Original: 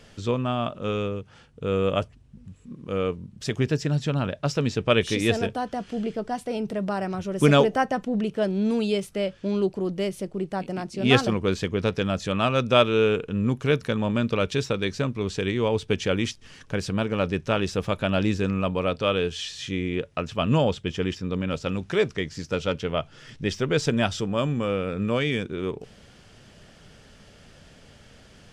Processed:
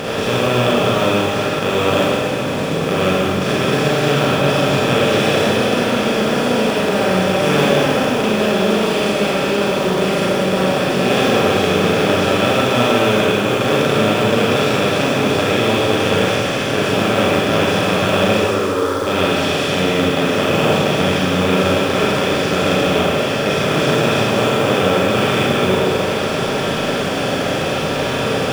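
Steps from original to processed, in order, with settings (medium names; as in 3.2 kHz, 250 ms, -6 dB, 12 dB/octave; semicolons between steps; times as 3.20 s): spectral levelling over time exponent 0.2; 18.35–19.07 s: static phaser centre 690 Hz, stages 6; companded quantiser 6-bit; Schroeder reverb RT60 2.1 s, combs from 33 ms, DRR -6.5 dB; trim -9 dB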